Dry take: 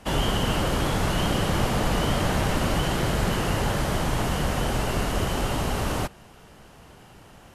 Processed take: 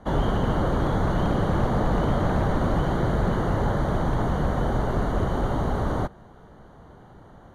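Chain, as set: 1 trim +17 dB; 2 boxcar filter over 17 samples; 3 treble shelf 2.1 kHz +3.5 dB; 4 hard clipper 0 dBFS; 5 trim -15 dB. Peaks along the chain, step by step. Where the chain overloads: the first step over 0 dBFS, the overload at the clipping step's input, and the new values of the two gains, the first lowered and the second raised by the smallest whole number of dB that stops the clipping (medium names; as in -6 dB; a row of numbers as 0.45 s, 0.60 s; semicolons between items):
+6.0 dBFS, +4.5 dBFS, +5.0 dBFS, 0.0 dBFS, -15.0 dBFS; step 1, 5.0 dB; step 1 +12 dB, step 5 -10 dB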